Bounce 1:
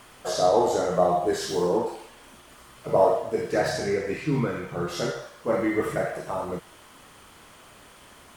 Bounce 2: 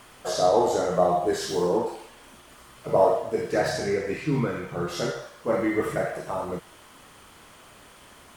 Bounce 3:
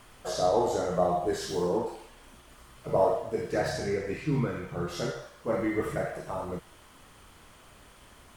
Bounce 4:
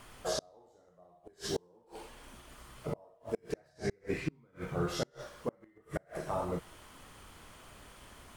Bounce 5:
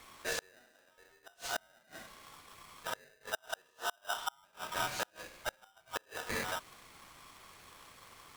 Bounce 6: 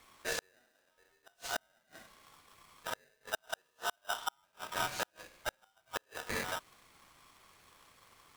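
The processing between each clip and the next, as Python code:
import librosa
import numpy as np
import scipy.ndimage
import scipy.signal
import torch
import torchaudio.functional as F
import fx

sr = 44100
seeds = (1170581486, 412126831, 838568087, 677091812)

y1 = x
y2 = fx.low_shelf(y1, sr, hz=91.0, db=12.0)
y2 = y2 * 10.0 ** (-5.0 / 20.0)
y3 = fx.gate_flip(y2, sr, shuts_db=-21.0, range_db=-35)
y4 = y3 * np.sign(np.sin(2.0 * np.pi * 1100.0 * np.arange(len(y3)) / sr))
y4 = y4 * 10.0 ** (-2.5 / 20.0)
y5 = fx.law_mismatch(y4, sr, coded='A')
y5 = y5 * 10.0 ** (2.0 / 20.0)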